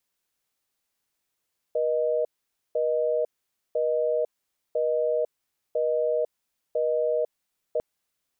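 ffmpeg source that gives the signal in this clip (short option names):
-f lavfi -i "aevalsrc='0.0596*(sin(2*PI*480*t)+sin(2*PI*620*t))*clip(min(mod(t,1),0.5-mod(t,1))/0.005,0,1)':d=6.05:s=44100"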